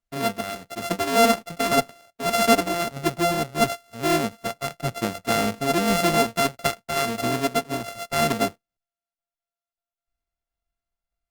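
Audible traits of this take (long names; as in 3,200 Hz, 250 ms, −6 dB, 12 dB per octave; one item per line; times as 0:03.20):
a buzz of ramps at a fixed pitch in blocks of 64 samples
tremolo triangle 1.7 Hz, depth 45%
Opus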